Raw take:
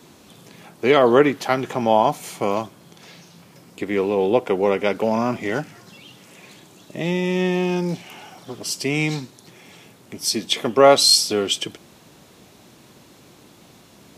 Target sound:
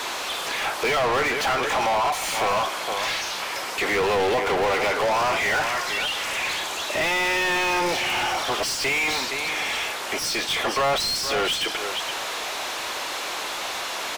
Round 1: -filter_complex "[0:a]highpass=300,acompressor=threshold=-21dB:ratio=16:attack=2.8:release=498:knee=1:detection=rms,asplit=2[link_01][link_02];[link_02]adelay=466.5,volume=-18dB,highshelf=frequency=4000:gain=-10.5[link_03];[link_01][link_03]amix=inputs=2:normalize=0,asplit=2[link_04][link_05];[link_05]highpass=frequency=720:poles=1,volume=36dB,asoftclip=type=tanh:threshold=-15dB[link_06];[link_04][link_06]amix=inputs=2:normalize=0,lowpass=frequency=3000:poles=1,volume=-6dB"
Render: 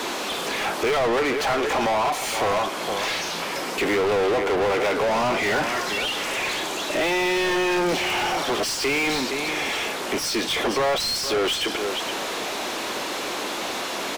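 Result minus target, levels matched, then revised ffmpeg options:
250 Hz band +6.5 dB
-filter_complex "[0:a]highpass=690,acompressor=threshold=-21dB:ratio=16:attack=2.8:release=498:knee=1:detection=rms,asplit=2[link_01][link_02];[link_02]adelay=466.5,volume=-18dB,highshelf=frequency=4000:gain=-10.5[link_03];[link_01][link_03]amix=inputs=2:normalize=0,asplit=2[link_04][link_05];[link_05]highpass=frequency=720:poles=1,volume=36dB,asoftclip=type=tanh:threshold=-15dB[link_06];[link_04][link_06]amix=inputs=2:normalize=0,lowpass=frequency=3000:poles=1,volume=-6dB"

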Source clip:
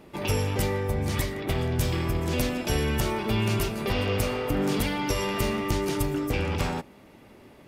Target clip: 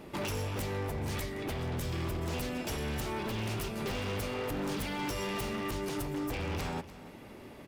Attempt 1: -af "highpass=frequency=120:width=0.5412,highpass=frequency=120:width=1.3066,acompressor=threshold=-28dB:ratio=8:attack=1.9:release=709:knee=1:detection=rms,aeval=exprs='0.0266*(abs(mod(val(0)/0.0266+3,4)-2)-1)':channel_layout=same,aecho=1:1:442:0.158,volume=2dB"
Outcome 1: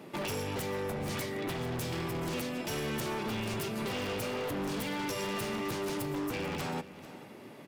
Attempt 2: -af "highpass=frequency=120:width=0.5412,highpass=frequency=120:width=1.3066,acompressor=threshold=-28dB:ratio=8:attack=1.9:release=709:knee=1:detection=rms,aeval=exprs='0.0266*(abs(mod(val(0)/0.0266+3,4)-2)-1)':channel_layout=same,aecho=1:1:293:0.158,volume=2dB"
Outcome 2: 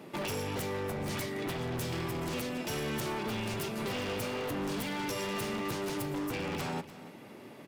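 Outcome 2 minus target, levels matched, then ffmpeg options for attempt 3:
125 Hz band −3.0 dB
-af "acompressor=threshold=-28dB:ratio=8:attack=1.9:release=709:knee=1:detection=rms,aeval=exprs='0.0266*(abs(mod(val(0)/0.0266+3,4)-2)-1)':channel_layout=same,aecho=1:1:293:0.158,volume=2dB"

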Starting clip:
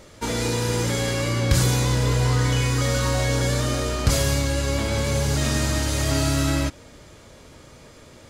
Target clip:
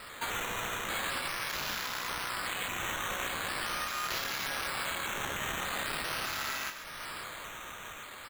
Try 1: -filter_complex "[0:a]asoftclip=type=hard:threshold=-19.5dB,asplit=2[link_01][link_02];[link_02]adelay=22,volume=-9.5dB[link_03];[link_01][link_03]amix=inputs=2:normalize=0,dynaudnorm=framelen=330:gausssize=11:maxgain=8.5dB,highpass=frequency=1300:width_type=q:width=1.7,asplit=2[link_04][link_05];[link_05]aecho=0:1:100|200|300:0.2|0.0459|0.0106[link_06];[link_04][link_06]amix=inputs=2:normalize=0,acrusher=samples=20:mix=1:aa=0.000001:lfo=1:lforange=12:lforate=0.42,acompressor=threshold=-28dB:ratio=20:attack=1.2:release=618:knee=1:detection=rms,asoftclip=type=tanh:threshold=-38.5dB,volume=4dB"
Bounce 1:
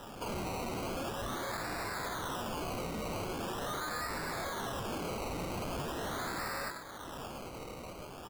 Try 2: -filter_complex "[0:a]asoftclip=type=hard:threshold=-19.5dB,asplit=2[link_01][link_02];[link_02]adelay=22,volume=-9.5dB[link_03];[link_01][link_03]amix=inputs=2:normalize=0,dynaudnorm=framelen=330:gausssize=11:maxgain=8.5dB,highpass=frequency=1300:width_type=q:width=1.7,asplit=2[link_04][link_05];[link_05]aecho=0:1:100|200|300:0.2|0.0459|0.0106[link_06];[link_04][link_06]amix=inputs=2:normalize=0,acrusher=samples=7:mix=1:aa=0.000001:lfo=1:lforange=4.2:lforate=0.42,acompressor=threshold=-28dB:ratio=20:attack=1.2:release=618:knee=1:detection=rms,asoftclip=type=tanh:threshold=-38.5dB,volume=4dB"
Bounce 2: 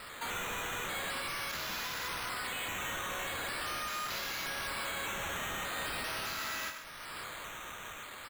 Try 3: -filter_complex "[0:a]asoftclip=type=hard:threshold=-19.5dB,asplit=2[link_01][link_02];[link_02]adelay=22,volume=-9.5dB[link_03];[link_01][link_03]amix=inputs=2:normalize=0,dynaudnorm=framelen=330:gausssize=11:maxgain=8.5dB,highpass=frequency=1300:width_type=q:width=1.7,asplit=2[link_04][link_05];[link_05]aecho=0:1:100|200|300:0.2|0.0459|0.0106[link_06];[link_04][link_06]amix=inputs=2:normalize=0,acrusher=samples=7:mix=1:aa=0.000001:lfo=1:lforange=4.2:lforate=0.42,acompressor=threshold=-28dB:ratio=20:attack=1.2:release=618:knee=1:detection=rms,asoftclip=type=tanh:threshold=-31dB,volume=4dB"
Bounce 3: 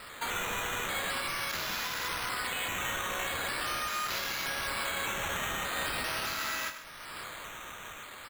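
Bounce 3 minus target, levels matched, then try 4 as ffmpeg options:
hard clipping: distortion −7 dB
-filter_complex "[0:a]asoftclip=type=hard:threshold=-29.5dB,asplit=2[link_01][link_02];[link_02]adelay=22,volume=-9.5dB[link_03];[link_01][link_03]amix=inputs=2:normalize=0,dynaudnorm=framelen=330:gausssize=11:maxgain=8.5dB,highpass=frequency=1300:width_type=q:width=1.7,asplit=2[link_04][link_05];[link_05]aecho=0:1:100|200|300:0.2|0.0459|0.0106[link_06];[link_04][link_06]amix=inputs=2:normalize=0,acrusher=samples=7:mix=1:aa=0.000001:lfo=1:lforange=4.2:lforate=0.42,acompressor=threshold=-28dB:ratio=20:attack=1.2:release=618:knee=1:detection=rms,asoftclip=type=tanh:threshold=-31dB,volume=4dB"

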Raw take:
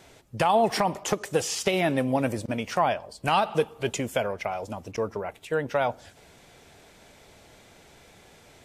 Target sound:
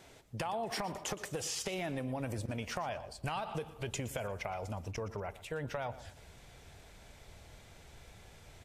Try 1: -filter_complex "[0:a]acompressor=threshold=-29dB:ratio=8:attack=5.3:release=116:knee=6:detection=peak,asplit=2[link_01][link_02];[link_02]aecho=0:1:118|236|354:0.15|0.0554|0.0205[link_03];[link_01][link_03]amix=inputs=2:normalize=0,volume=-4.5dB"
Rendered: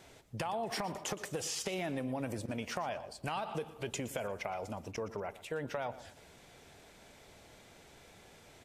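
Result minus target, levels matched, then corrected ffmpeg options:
125 Hz band −3.5 dB
-filter_complex "[0:a]acompressor=threshold=-29dB:ratio=8:attack=5.3:release=116:knee=6:detection=peak,asubboost=boost=4:cutoff=120,asplit=2[link_01][link_02];[link_02]aecho=0:1:118|236|354:0.15|0.0554|0.0205[link_03];[link_01][link_03]amix=inputs=2:normalize=0,volume=-4.5dB"

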